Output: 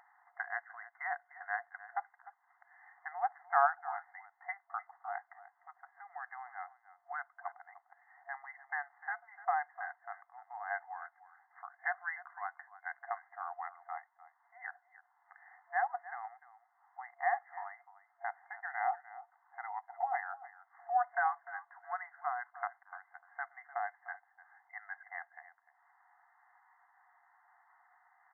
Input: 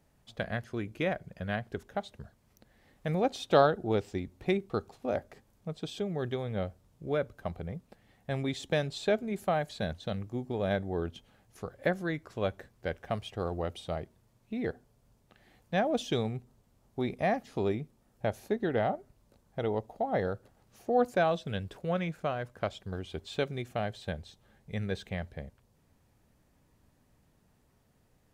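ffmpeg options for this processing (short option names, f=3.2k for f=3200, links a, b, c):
-af "acompressor=mode=upward:threshold=-45dB:ratio=2.5,aecho=1:1:300:0.15,afftfilt=real='re*between(b*sr/4096,690,2100)':imag='im*between(b*sr/4096,690,2100)':win_size=4096:overlap=0.75,volume=1dB"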